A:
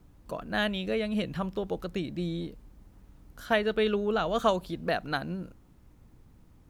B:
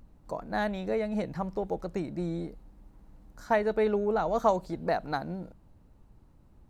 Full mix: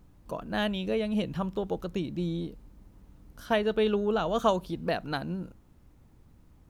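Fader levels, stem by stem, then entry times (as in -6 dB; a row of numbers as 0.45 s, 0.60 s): -1.5 dB, -7.5 dB; 0.00 s, 0.00 s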